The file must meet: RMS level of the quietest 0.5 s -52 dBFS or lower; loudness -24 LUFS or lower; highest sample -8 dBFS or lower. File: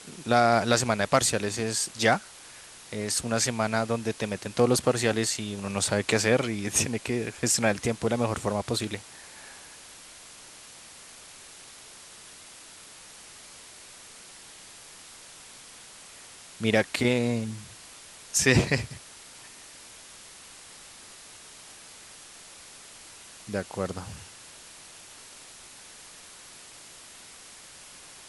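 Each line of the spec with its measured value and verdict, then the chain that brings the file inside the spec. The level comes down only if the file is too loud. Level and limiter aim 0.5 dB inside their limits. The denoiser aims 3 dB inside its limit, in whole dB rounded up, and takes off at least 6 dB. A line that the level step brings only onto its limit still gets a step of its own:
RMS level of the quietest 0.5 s -48 dBFS: fail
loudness -26.0 LUFS: pass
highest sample -6.5 dBFS: fail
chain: noise reduction 7 dB, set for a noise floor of -48 dBFS; peak limiter -8.5 dBFS

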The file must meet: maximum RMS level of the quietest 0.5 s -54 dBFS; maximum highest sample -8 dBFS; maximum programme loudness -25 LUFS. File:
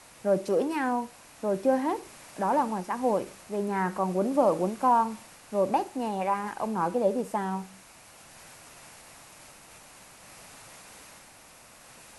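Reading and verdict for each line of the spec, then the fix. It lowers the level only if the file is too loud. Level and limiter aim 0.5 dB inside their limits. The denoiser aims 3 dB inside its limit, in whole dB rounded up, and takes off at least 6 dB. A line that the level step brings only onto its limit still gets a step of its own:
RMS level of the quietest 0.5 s -53 dBFS: fail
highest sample -11.0 dBFS: pass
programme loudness -28.0 LUFS: pass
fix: noise reduction 6 dB, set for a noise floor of -53 dBFS

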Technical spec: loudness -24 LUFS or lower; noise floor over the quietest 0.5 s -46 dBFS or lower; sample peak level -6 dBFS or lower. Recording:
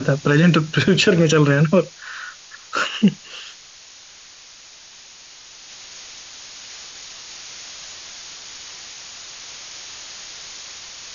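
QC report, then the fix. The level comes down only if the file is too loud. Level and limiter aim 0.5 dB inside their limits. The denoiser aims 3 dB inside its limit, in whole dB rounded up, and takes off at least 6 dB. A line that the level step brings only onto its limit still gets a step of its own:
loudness -17.5 LUFS: fail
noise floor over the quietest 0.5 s -44 dBFS: fail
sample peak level -5.0 dBFS: fail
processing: trim -7 dB

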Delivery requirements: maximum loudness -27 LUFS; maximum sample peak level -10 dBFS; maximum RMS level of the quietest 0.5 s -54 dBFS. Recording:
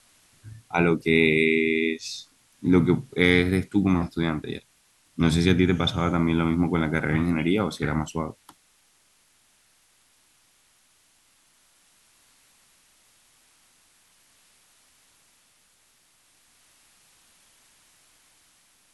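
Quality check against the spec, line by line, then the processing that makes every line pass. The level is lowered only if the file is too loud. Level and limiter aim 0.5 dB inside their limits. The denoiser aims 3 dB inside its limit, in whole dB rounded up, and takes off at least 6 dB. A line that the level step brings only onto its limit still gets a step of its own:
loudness -23.0 LUFS: fail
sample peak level -4.5 dBFS: fail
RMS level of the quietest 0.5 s -63 dBFS: pass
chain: trim -4.5 dB; peak limiter -10.5 dBFS

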